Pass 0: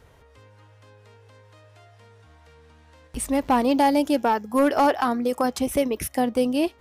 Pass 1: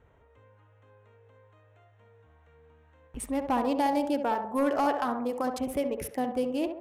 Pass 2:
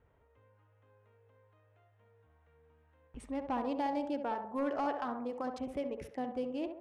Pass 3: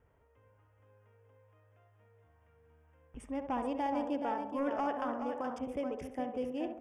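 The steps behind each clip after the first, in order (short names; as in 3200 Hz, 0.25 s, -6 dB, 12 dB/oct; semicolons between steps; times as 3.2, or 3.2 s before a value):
Wiener smoothing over 9 samples; narrowing echo 67 ms, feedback 55%, band-pass 660 Hz, level -5 dB; gain -7.5 dB
air absorption 96 m; gain -7.5 dB
Butterworth band-stop 4100 Hz, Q 3; on a send: echo 0.425 s -7.5 dB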